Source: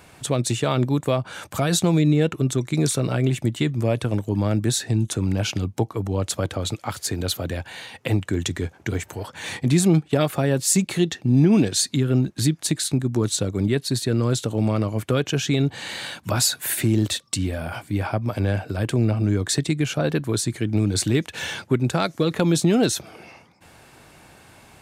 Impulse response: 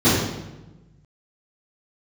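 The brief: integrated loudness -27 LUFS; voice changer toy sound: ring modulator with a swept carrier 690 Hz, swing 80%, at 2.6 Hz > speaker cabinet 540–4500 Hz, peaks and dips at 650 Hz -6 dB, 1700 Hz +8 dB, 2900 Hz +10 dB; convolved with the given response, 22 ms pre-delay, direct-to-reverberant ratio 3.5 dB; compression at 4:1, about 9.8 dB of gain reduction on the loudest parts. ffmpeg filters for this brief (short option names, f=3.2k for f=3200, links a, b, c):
-filter_complex "[0:a]acompressor=threshold=-25dB:ratio=4,asplit=2[a][b];[1:a]atrim=start_sample=2205,adelay=22[c];[b][c]afir=irnorm=-1:irlink=0,volume=-26dB[d];[a][d]amix=inputs=2:normalize=0,aeval=exprs='val(0)*sin(2*PI*690*n/s+690*0.8/2.6*sin(2*PI*2.6*n/s))':c=same,highpass=540,equalizer=f=650:t=q:w=4:g=-6,equalizer=f=1.7k:t=q:w=4:g=8,equalizer=f=2.9k:t=q:w=4:g=10,lowpass=f=4.5k:w=0.5412,lowpass=f=4.5k:w=1.3066,volume=-1.5dB"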